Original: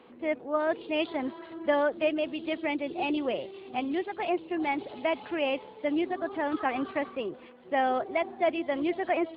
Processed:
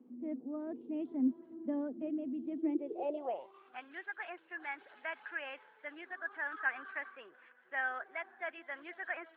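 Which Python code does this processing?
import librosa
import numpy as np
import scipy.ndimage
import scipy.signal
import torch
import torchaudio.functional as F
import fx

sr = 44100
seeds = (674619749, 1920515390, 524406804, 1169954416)

y = fx.filter_sweep_bandpass(x, sr, from_hz=250.0, to_hz=1600.0, start_s=2.53, end_s=3.79, q=7.8)
y = y * librosa.db_to_amplitude(6.0)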